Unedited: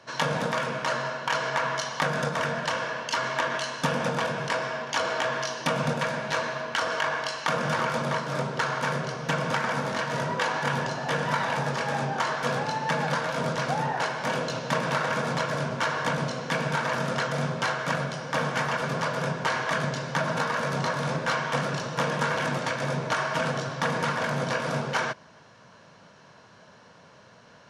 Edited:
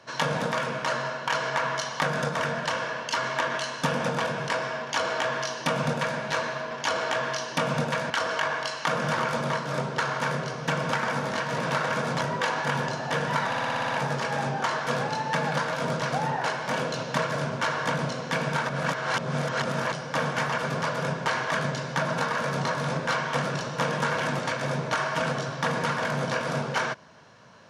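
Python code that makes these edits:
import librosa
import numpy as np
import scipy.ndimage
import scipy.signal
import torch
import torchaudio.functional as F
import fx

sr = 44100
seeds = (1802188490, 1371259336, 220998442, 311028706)

y = fx.edit(x, sr, fx.duplicate(start_s=4.8, length_s=1.39, to_s=6.71),
    fx.stutter(start_s=11.46, slice_s=0.06, count=8),
    fx.move(start_s=14.78, length_s=0.63, to_s=10.19),
    fx.reverse_span(start_s=16.88, length_s=1.23), tone=tone)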